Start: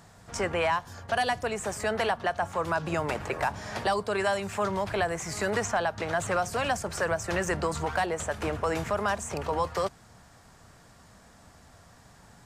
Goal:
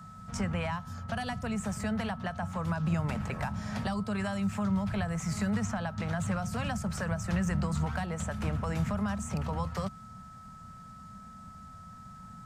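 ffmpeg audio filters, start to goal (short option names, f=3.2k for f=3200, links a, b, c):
-filter_complex "[0:a]lowshelf=f=270:t=q:w=3:g=8.5,acrossover=split=180[a][b];[b]acompressor=threshold=-27dB:ratio=6[c];[a][c]amix=inputs=2:normalize=0,aeval=exprs='val(0)+0.00708*sin(2*PI*1300*n/s)':c=same,volume=-5dB"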